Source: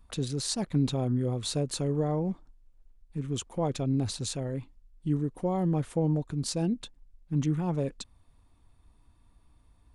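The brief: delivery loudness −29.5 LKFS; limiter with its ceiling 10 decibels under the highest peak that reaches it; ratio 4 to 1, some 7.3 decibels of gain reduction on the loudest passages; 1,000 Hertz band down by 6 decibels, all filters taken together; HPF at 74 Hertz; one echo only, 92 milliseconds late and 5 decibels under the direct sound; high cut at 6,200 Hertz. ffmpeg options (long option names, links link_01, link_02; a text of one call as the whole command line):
ffmpeg -i in.wav -af "highpass=74,lowpass=6200,equalizer=frequency=1000:width_type=o:gain=-9,acompressor=threshold=-31dB:ratio=4,alimiter=level_in=6.5dB:limit=-24dB:level=0:latency=1,volume=-6.5dB,aecho=1:1:92:0.562,volume=9dB" out.wav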